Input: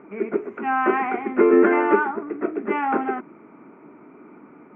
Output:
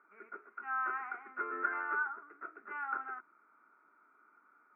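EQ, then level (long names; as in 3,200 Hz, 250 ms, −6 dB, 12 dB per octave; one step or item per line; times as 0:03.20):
resonant band-pass 1,400 Hz, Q 7.4
−4.5 dB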